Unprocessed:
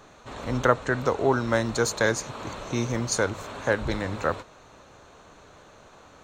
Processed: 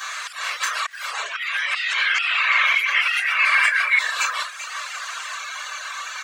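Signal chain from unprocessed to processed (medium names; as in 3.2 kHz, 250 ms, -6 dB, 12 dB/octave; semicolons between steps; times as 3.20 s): compressor with a negative ratio -32 dBFS, ratio -1; high-pass 1.3 kHz 24 dB/octave; comb 1.8 ms, depth 47%; delay 390 ms -15.5 dB; simulated room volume 68 m³, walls mixed, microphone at 2.1 m; slow attack 464 ms; 1.40–3.99 s: resonant low-pass 2.2 kHz, resonance Q 4.6; ever faster or slower copies 96 ms, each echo +3 st, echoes 3, each echo -6 dB; reverb removal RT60 0.88 s; three bands compressed up and down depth 40%; trim +8 dB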